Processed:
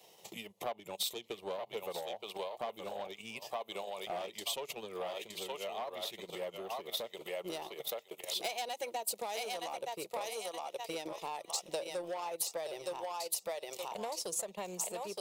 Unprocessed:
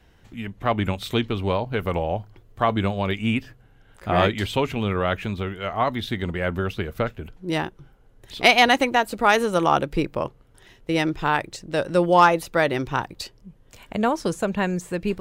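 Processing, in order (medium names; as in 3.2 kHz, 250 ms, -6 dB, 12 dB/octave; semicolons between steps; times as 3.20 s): static phaser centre 640 Hz, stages 4; on a send: thinning echo 919 ms, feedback 20%, high-pass 600 Hz, level -3.5 dB; on the sum: compression 2.5:1, threshold -34 dBFS, peak gain reduction 14.5 dB; saturation -28 dBFS, distortion -14 dB; peak limiter -37.5 dBFS, peak gain reduction 9.5 dB; high-pass 220 Hz 24 dB/octave; treble shelf 4.7 kHz +10.5 dB; transient shaper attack +8 dB, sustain -11 dB; trim +2.5 dB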